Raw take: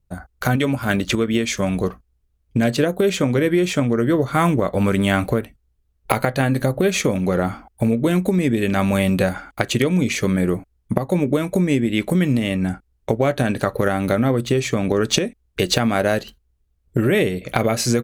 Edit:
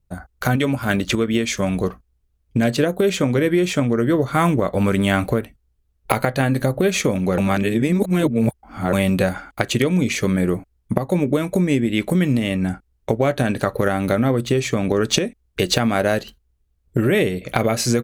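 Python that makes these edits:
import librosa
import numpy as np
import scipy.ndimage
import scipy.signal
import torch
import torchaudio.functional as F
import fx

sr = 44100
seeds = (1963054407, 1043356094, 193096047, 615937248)

y = fx.edit(x, sr, fx.reverse_span(start_s=7.38, length_s=1.55), tone=tone)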